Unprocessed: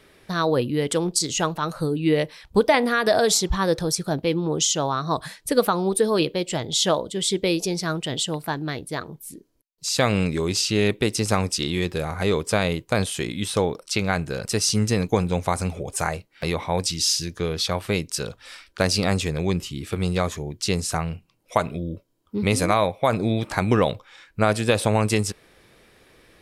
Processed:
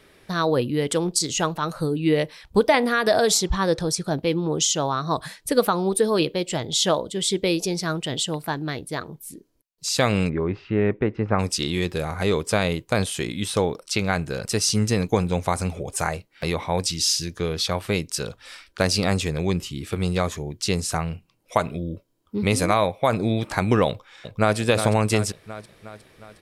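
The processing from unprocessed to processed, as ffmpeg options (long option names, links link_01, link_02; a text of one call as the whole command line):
ffmpeg -i in.wav -filter_complex "[0:a]asettb=1/sr,asplit=3[link_01][link_02][link_03];[link_01]atrim=end=3.434[link_04];[link_02]atrim=start=3.43:end=4.13,asetpts=PTS-STARTPTS,afade=type=in:duration=0.004:curve=qsin,afade=type=out:start_time=0.696:duration=0.004:curve=qsin,lowpass=10000[link_05];[link_03]atrim=start=4.126[link_06];[link_04][link_05]acrossfade=duration=0.004:curve1=hsin:curve2=qsin[link_07];[link_07][link_06]acrossfade=duration=0.004:curve1=qsin:curve2=hsin,asettb=1/sr,asplit=3[link_08][link_09][link_10];[link_08]atrim=end=10.294[link_11];[link_09]atrim=start=10.29:end=11.39,asetpts=PTS-STARTPTS,afade=type=in:duration=0.004:curve=qsin,afade=type=out:start_time=1.096:duration=0.004:curve=qsin,lowpass=frequency=1900:width=0.5412,lowpass=frequency=1900:width=1.3066[link_12];[link_10]atrim=start=11.386[link_13];[link_11][link_12]acrossfade=duration=0.004:curve1=hsin:curve2=qsin[link_14];[link_14][link_13]acrossfade=duration=0.004:curve1=qsin:curve2=hsin,asplit=2[link_15][link_16];[link_16]afade=type=in:start_time=23.88:duration=0.01,afade=type=out:start_time=24.57:duration=0.01,aecho=0:1:360|720|1080|1440|1800|2160|2520|2880:0.398107|0.238864|0.143319|0.0859911|0.0515947|0.0309568|0.0185741|0.0111445[link_17];[link_15][link_17]amix=inputs=2:normalize=0" out.wav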